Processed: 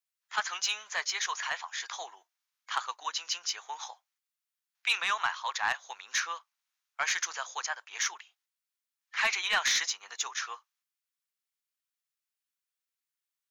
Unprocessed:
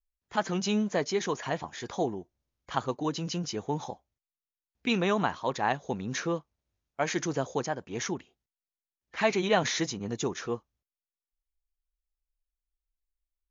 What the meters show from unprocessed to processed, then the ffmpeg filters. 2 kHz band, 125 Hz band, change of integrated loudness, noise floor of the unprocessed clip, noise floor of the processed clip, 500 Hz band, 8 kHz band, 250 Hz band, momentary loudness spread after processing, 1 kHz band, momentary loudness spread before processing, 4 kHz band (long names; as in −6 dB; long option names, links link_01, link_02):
+4.5 dB, below −30 dB, −0.5 dB, below −85 dBFS, below −85 dBFS, −18.5 dB, can't be measured, below −30 dB, 14 LU, −2.0 dB, 9 LU, +5.0 dB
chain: -af "highpass=frequency=1100:width=0.5412,highpass=frequency=1100:width=1.3066,aeval=exprs='0.168*(cos(1*acos(clip(val(0)/0.168,-1,1)))-cos(1*PI/2))+0.0211*(cos(5*acos(clip(val(0)/0.168,-1,1)))-cos(5*PI/2))':channel_layout=same,volume=1.5dB"